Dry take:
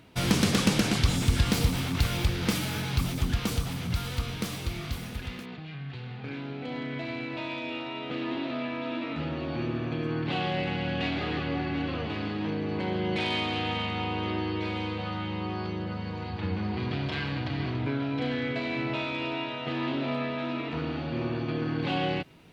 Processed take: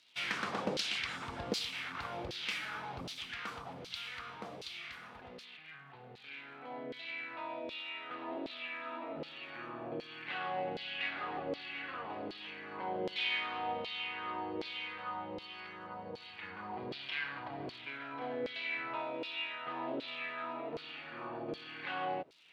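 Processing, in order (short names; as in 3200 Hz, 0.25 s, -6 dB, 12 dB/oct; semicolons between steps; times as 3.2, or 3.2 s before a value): crackle 220/s -46 dBFS; reverse; upward compressor, threshold -48 dBFS; reverse; LFO band-pass saw down 1.3 Hz 480–4600 Hz; gain +1 dB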